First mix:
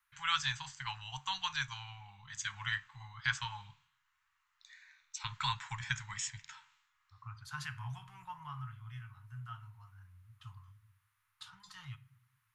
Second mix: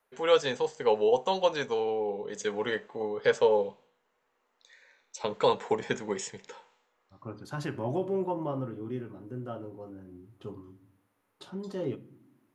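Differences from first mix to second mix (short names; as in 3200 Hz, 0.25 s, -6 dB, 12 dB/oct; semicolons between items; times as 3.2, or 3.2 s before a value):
first voice: add resonant low shelf 370 Hz -6.5 dB, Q 3; master: remove inverse Chebyshev band-stop 220–590 Hz, stop band 50 dB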